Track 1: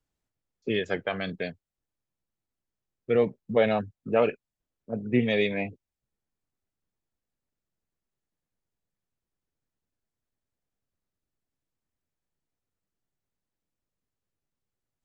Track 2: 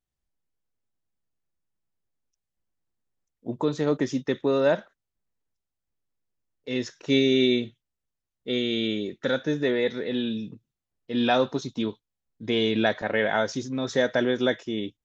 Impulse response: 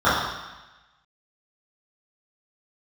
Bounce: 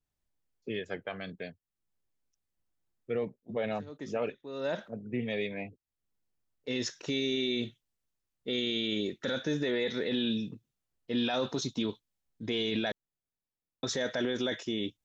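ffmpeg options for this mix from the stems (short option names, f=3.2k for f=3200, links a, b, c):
-filter_complex "[0:a]volume=-8.5dB,asplit=2[a][b];[1:a]adynamicequalizer=threshold=0.00891:dfrequency=2300:dqfactor=0.7:tfrequency=2300:tqfactor=0.7:attack=5:release=100:ratio=0.375:range=3:mode=boostabove:tftype=highshelf,volume=-1.5dB,asplit=3[c][d][e];[c]atrim=end=12.92,asetpts=PTS-STARTPTS,afade=t=out:st=12.916:d=0.004:c=hsin[f];[d]atrim=start=12.92:end=13.83,asetpts=PTS-STARTPTS,volume=0[g];[e]atrim=start=13.83,asetpts=PTS-STARTPTS,afade=t=in:d=0.004:c=hsin[h];[f][g][h]concat=n=3:v=0:a=1[i];[b]apad=whole_len=663330[j];[i][j]sidechaincompress=threshold=-59dB:ratio=8:attack=16:release=286[k];[a][k]amix=inputs=2:normalize=0,alimiter=limit=-22.5dB:level=0:latency=1:release=16"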